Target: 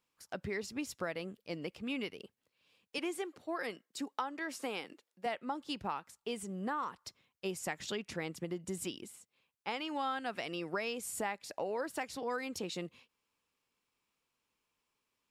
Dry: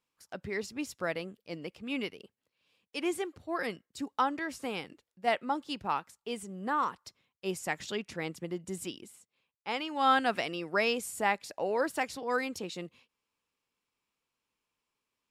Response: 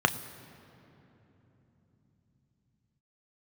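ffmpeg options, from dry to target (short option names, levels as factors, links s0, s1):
-filter_complex "[0:a]asettb=1/sr,asplit=3[s0][s1][s2];[s0]atrim=end=2.984[s3];[s1]atrim=start=2.98:end=5.26,asetpts=PTS-STARTPTS,afade=t=in:d=0.004:c=qsin,afade=t=out:st=2.276:d=0.004:c=qsin,highpass=260[s4];[s2]atrim=start=5.256[s5];[s3][s4]acrossfade=d=0.004:c1=hsin:c2=qsin[s6];[s6][s5]acrossfade=d=0.004:c1=qsin:c2=hsin,acompressor=threshold=0.0158:ratio=5,volume=1.19"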